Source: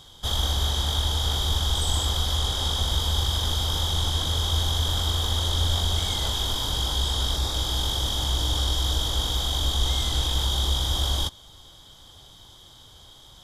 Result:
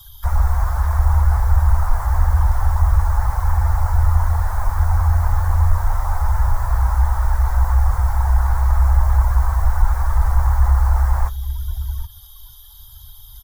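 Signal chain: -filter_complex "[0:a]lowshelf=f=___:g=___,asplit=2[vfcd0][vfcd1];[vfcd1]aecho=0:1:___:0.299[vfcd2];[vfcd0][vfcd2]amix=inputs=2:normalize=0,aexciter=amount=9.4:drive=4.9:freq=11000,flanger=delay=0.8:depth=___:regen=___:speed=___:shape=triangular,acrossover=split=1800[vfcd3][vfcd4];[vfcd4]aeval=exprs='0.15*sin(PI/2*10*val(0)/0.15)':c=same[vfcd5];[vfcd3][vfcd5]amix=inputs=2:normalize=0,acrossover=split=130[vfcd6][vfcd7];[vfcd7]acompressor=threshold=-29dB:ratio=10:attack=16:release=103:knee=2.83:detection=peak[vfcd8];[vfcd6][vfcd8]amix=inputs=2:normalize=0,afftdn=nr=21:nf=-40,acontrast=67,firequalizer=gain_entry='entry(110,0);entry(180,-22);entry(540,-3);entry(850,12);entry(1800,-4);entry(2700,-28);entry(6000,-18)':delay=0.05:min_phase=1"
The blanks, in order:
100, 12, 777, 5.6, -34, 0.76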